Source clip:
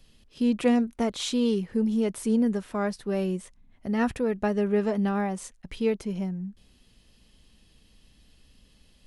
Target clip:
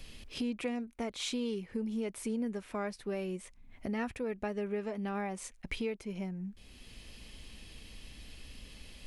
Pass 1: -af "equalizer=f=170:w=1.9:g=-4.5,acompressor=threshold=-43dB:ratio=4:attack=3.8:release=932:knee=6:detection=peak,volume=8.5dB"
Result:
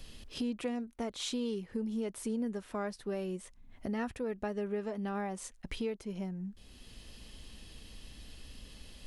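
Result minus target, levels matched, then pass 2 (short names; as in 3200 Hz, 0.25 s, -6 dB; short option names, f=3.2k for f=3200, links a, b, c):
2000 Hz band -3.0 dB
-af "equalizer=f=170:w=1.9:g=-4.5,acompressor=threshold=-43dB:ratio=4:attack=3.8:release=932:knee=6:detection=peak,equalizer=f=2.3k:w=4:g=7.5,volume=8.5dB"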